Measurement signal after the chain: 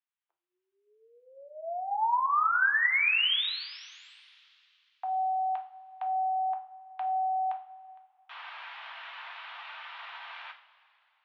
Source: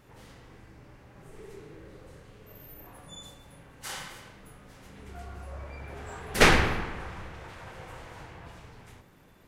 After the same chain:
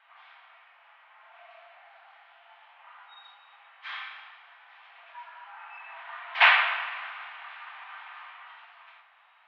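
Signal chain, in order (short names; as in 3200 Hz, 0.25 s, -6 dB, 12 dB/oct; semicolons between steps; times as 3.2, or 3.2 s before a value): two-slope reverb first 0.39 s, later 2.9 s, from -18 dB, DRR 3 dB; mistuned SSB +260 Hz 580–3200 Hz; gain +1.5 dB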